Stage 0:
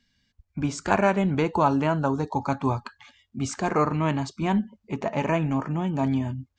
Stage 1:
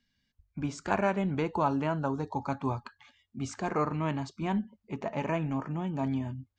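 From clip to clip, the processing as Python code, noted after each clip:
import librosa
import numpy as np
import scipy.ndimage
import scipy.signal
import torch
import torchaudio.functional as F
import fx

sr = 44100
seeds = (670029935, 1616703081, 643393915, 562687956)

y = fx.high_shelf(x, sr, hz=7500.0, db=-6.5)
y = fx.hum_notches(y, sr, base_hz=50, count=2)
y = F.gain(torch.from_numpy(y), -6.5).numpy()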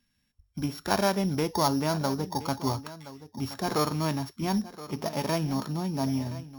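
y = np.r_[np.sort(x[:len(x) // 8 * 8].reshape(-1, 8), axis=1).ravel(), x[len(x) // 8 * 8:]]
y = y + 10.0 ** (-16.0 / 20.0) * np.pad(y, (int(1022 * sr / 1000.0), 0))[:len(y)]
y = F.gain(torch.from_numpy(y), 2.5).numpy()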